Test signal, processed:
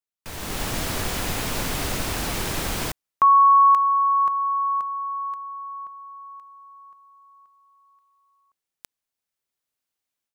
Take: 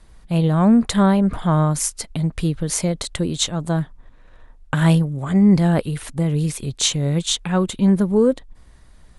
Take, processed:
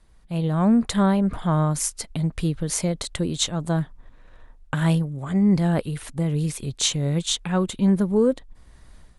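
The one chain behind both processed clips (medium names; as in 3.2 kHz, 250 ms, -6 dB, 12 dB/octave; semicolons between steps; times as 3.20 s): level rider gain up to 11 dB; trim -8.5 dB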